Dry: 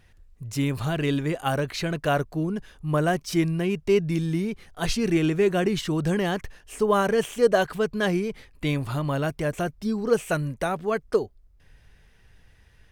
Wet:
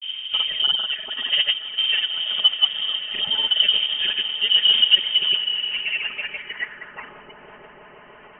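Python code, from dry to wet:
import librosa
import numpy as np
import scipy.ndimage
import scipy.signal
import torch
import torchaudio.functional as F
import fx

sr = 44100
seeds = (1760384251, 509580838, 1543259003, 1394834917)

p1 = fx.spec_dropout(x, sr, seeds[0], share_pct=28)
p2 = fx.dmg_wind(p1, sr, seeds[1], corner_hz=290.0, level_db=-28.0)
p3 = scipy.signal.sosfilt(scipy.signal.butter(2, 53.0, 'highpass', fs=sr, output='sos'), p2)
p4 = p3 + 0.54 * np.pad(p3, (int(4.7 * sr / 1000.0), 0))[:len(p3)]
p5 = fx.stretch_vocoder(p4, sr, factor=0.65)
p6 = fx.granulator(p5, sr, seeds[2], grain_ms=100.0, per_s=20.0, spray_ms=100.0, spread_st=0)
p7 = p6 + fx.echo_swell(p6, sr, ms=163, loudest=8, wet_db=-17.0, dry=0)
p8 = fx.filter_sweep_highpass(p7, sr, from_hz=290.0, to_hz=2500.0, start_s=5.11, end_s=7.14, q=2.7)
y = fx.freq_invert(p8, sr, carrier_hz=3400)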